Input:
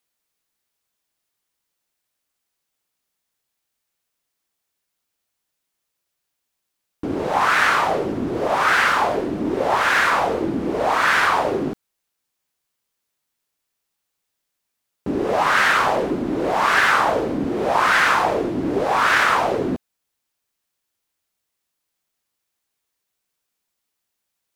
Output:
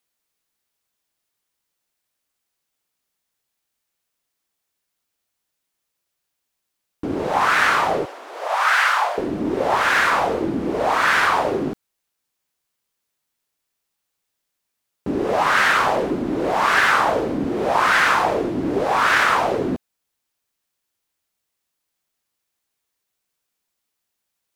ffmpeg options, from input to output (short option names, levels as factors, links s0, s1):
-filter_complex "[0:a]asettb=1/sr,asplit=3[s0][s1][s2];[s0]atrim=end=8.054[s3];[s1]atrim=start=8.05:end=9.18,asetpts=PTS-STARTPTS,afade=t=in:d=0.004:c=qsin,afade=t=out:st=1.126:d=0.004:c=qsin,highpass=f=650:w=0.5412,highpass=f=650:w=1.3066[s4];[s2]atrim=start=9.176[s5];[s3][s4]acrossfade=d=0.004:c1=hsin:c2=qsin[s6];[s6][s5]acrossfade=d=0.004:c1=qsin:c2=hsin"